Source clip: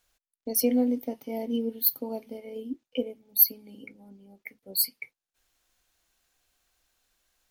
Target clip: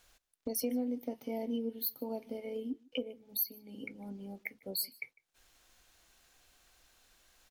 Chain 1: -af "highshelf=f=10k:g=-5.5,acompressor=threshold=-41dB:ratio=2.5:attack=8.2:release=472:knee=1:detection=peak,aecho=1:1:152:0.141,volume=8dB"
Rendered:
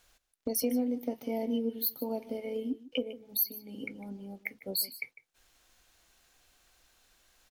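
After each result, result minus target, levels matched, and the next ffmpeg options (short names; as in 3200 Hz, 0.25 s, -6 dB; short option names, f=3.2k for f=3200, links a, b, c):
echo-to-direct +8 dB; compressor: peak gain reduction -4 dB
-af "highshelf=f=10k:g=-5.5,acompressor=threshold=-41dB:ratio=2.5:attack=8.2:release=472:knee=1:detection=peak,aecho=1:1:152:0.0562,volume=8dB"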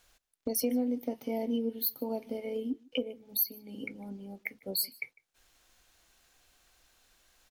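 compressor: peak gain reduction -4 dB
-af "highshelf=f=10k:g=-5.5,acompressor=threshold=-48dB:ratio=2.5:attack=8.2:release=472:knee=1:detection=peak,aecho=1:1:152:0.0562,volume=8dB"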